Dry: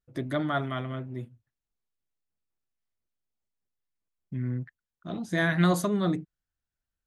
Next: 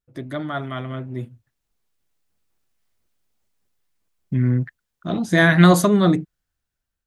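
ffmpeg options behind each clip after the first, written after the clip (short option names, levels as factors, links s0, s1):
-af "dynaudnorm=f=540:g=5:m=5.62"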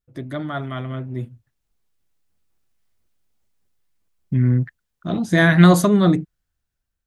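-af "lowshelf=f=180:g=5,volume=0.891"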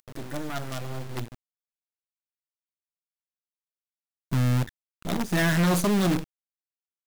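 -af "acompressor=mode=upward:threshold=0.0178:ratio=2.5,acrusher=bits=4:dc=4:mix=0:aa=0.000001,asoftclip=type=tanh:threshold=0.106"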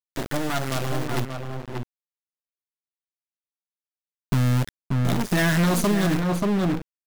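-filter_complex "[0:a]aeval=exprs='val(0)*gte(abs(val(0)),0.0188)':c=same,asplit=2[s0][s1];[s1]adelay=583.1,volume=0.501,highshelf=f=4000:g=-13.1[s2];[s0][s2]amix=inputs=2:normalize=0,acompressor=threshold=0.0447:ratio=6,volume=2.51"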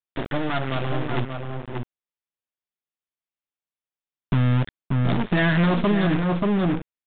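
-af "aresample=8000,aresample=44100,volume=1.12"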